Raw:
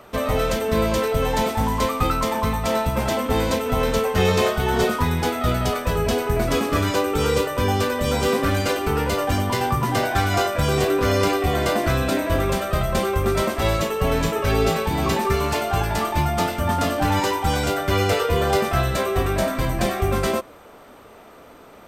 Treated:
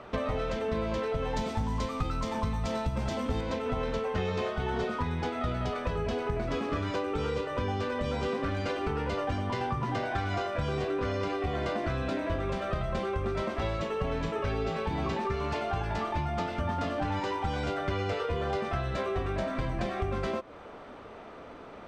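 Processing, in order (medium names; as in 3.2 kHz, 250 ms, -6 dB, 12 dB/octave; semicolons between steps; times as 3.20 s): 1.36–3.41 s: tone controls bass +7 dB, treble +11 dB; compression 6:1, threshold -28 dBFS, peak gain reduction 17 dB; distance through air 150 m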